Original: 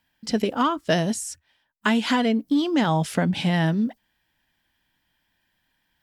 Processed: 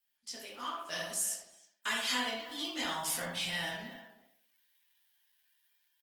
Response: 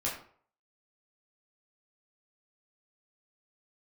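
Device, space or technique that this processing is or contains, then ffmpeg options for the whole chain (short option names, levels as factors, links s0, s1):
speakerphone in a meeting room: -filter_complex "[0:a]aderivative,asplit=2[s0][s1];[s1]adelay=64,lowpass=f=2500:p=1,volume=0.596,asplit=2[s2][s3];[s3]adelay=64,lowpass=f=2500:p=1,volume=0.48,asplit=2[s4][s5];[s5]adelay=64,lowpass=f=2500:p=1,volume=0.48,asplit=2[s6][s7];[s7]adelay=64,lowpass=f=2500:p=1,volume=0.48,asplit=2[s8][s9];[s9]adelay=64,lowpass=f=2500:p=1,volume=0.48,asplit=2[s10][s11];[s11]adelay=64,lowpass=f=2500:p=1,volume=0.48[s12];[s0][s2][s4][s6][s8][s10][s12]amix=inputs=7:normalize=0[s13];[1:a]atrim=start_sample=2205[s14];[s13][s14]afir=irnorm=-1:irlink=0,asplit=2[s15][s16];[s16]adelay=310,highpass=300,lowpass=3400,asoftclip=type=hard:threshold=0.0473,volume=0.2[s17];[s15][s17]amix=inputs=2:normalize=0,dynaudnorm=f=350:g=7:m=2,volume=0.447" -ar 48000 -c:a libopus -b:a 20k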